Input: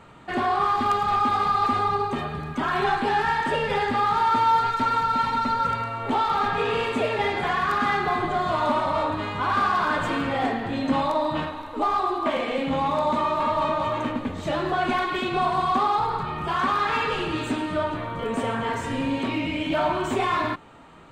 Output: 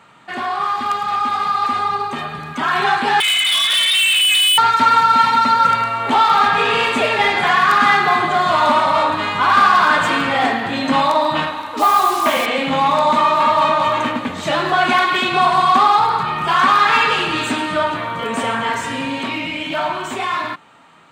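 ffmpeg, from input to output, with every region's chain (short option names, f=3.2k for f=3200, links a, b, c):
-filter_complex "[0:a]asettb=1/sr,asplit=3[a][b][c];[a]atrim=end=3.204[d];[b]atrim=start=3.2:end=4.58,asetpts=PTS-STARTPTS,afade=t=in:d=0.004:c=qsin,afade=t=out:st=1.376:d=0.004:c=qsin,lowpass=f=3.3k:t=q:w=0.5098,lowpass=f=3.3k:t=q:w=0.6013,lowpass=f=3.3k:t=q:w=0.9,lowpass=f=3.3k:t=q:w=2.563,afreqshift=-3900,volume=25dB,asoftclip=hard,volume=-25dB[e];[c]atrim=start=4.576[f];[d][e]acrossfade=d=0.004:c1=hsin:c2=qsin[g];[g][f]acrossfade=d=0.004:c1=qsin:c2=hsin,asettb=1/sr,asplit=3[h][i][j];[h]atrim=end=11.774[k];[i]atrim=start=11.77:end=12.46,asetpts=PTS-STARTPTS,afade=t=in:d=0.004:c=qsin,afade=t=out:st=0.686:d=0.004:c=qsin,aeval=exprs='val(0)+0.00282*(sin(2*PI*60*n/s)+sin(2*PI*2*60*n/s)/2+sin(2*PI*3*60*n/s)/3+sin(2*PI*4*60*n/s)/4+sin(2*PI*5*60*n/s)/5)':c=same,acrusher=bits=5:mix=0:aa=0.5[l];[j]atrim=start=12.456[m];[k][l]acrossfade=d=0.004:c1=hsin:c2=qsin[n];[n][m]acrossfade=d=0.004:c1=qsin:c2=hsin,highpass=200,equalizer=f=380:t=o:w=1.9:g=-9.5,dynaudnorm=f=410:g=13:m=8dB,volume=5dB"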